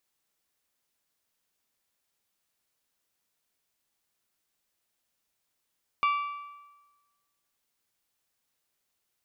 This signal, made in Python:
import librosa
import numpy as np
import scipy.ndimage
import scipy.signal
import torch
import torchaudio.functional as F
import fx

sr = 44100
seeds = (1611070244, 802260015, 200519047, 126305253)

y = fx.strike_metal(sr, length_s=1.55, level_db=-21.0, body='bell', hz=1160.0, decay_s=1.22, tilt_db=7.5, modes=5)